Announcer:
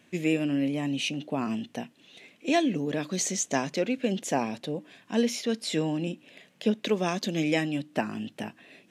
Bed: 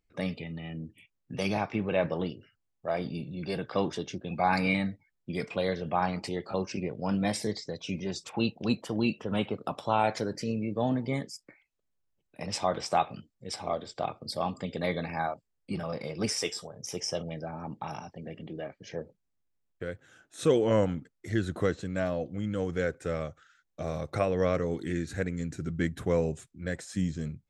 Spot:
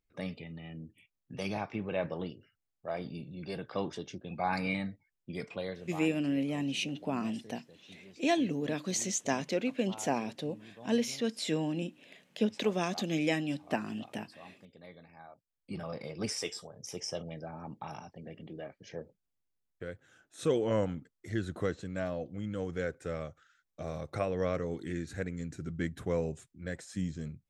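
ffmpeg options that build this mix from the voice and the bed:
ffmpeg -i stem1.wav -i stem2.wav -filter_complex "[0:a]adelay=5750,volume=-4dB[link_01];[1:a]volume=10.5dB,afade=type=out:start_time=5.44:duration=0.67:silence=0.16788,afade=type=in:start_time=15.27:duration=0.55:silence=0.149624[link_02];[link_01][link_02]amix=inputs=2:normalize=0" out.wav

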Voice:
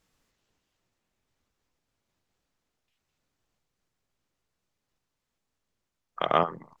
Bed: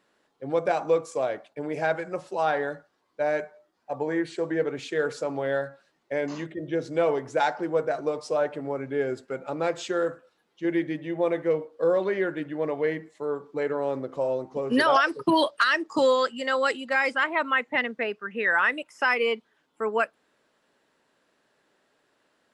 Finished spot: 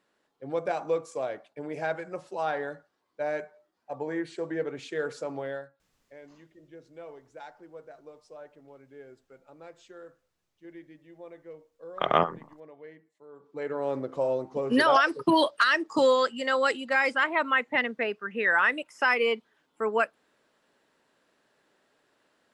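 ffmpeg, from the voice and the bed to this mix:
ffmpeg -i stem1.wav -i stem2.wav -filter_complex "[0:a]adelay=5800,volume=0.5dB[link_01];[1:a]volume=15.5dB,afade=type=out:start_time=5.38:duration=0.35:silence=0.158489,afade=type=in:start_time=13.32:duration=0.67:silence=0.0944061[link_02];[link_01][link_02]amix=inputs=2:normalize=0" out.wav

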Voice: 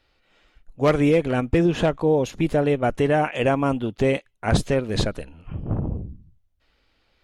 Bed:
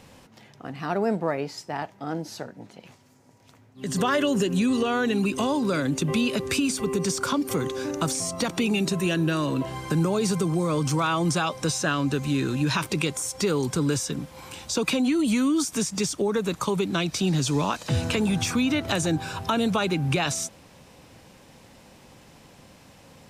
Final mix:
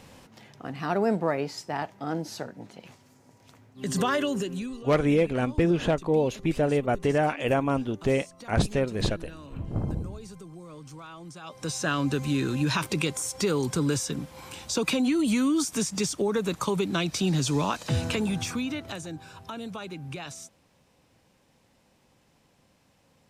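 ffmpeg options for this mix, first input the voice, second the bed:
ffmpeg -i stem1.wav -i stem2.wav -filter_complex "[0:a]adelay=4050,volume=-4dB[link_01];[1:a]volume=18.5dB,afade=type=out:start_time=3.85:duration=0.97:silence=0.1,afade=type=in:start_time=11.41:duration=0.53:silence=0.11885,afade=type=out:start_time=17.9:duration=1.14:silence=0.251189[link_02];[link_01][link_02]amix=inputs=2:normalize=0" out.wav

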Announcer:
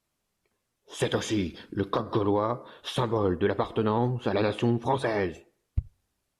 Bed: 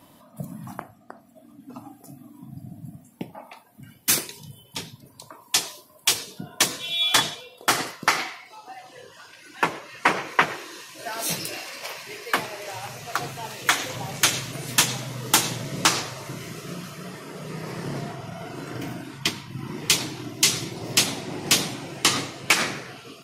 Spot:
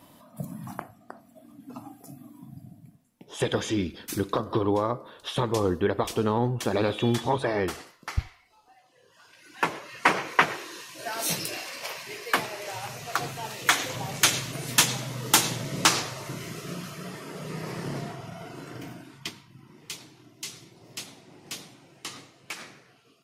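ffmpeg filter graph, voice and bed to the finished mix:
ffmpeg -i stem1.wav -i stem2.wav -filter_complex "[0:a]adelay=2400,volume=0.5dB[link_01];[1:a]volume=15dB,afade=type=out:start_time=2.26:duration=0.72:silence=0.158489,afade=type=in:start_time=9:duration=0.88:silence=0.158489,afade=type=out:start_time=17.62:duration=2.04:silence=0.133352[link_02];[link_01][link_02]amix=inputs=2:normalize=0" out.wav

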